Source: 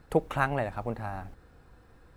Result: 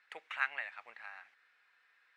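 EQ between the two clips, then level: ladder band-pass 2.4 kHz, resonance 50%; +8.5 dB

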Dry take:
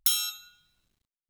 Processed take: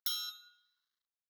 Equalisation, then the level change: high-pass 1 kHz 12 dB/octave; treble shelf 6.6 kHz -6.5 dB; static phaser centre 2.5 kHz, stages 6; -4.5 dB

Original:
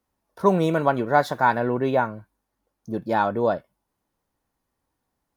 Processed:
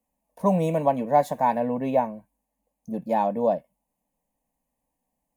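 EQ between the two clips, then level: high-order bell 4.3 kHz -10 dB 1 oct; static phaser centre 370 Hz, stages 6; +1.0 dB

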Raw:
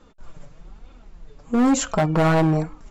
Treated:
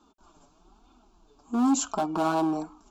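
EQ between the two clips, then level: high-pass 200 Hz 6 dB/octave; static phaser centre 520 Hz, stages 6; -2.5 dB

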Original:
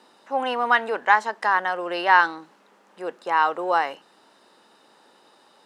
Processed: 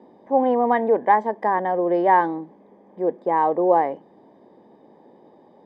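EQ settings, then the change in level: boxcar filter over 32 samples; tilt EQ -2 dB/octave; +8.5 dB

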